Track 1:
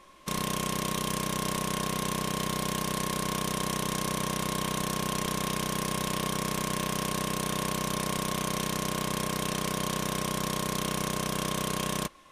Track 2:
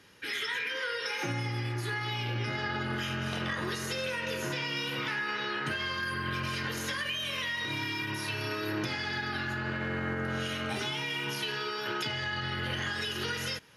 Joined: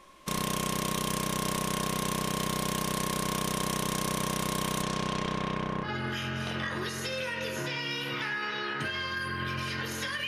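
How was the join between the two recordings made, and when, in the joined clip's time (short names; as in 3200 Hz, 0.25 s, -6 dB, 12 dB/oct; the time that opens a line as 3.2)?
track 1
4.82–5.89 LPF 7600 Hz -> 1500 Hz
5.85 switch to track 2 from 2.71 s, crossfade 0.08 s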